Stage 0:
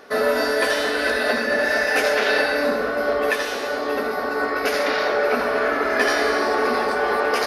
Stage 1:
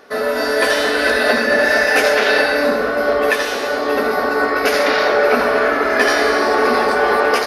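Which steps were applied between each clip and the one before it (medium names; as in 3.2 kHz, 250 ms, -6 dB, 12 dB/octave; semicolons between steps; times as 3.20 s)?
level rider gain up to 8.5 dB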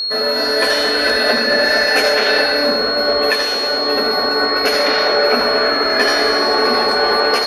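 whistle 4.3 kHz -17 dBFS; trim -1 dB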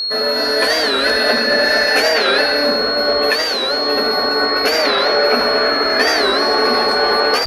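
warped record 45 rpm, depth 160 cents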